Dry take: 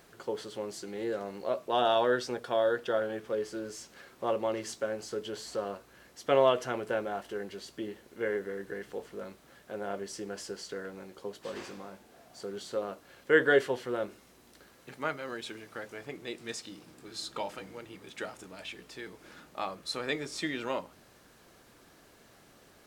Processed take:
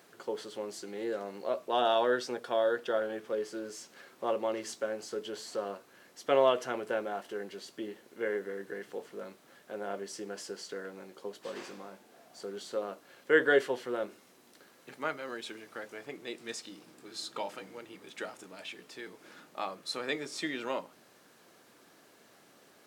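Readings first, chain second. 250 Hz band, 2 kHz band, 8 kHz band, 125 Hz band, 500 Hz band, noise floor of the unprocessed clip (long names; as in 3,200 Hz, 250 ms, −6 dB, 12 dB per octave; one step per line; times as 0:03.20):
−2.0 dB, −1.0 dB, −1.0 dB, −7.0 dB, −1.0 dB, −60 dBFS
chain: high-pass filter 190 Hz 12 dB per octave
level −1 dB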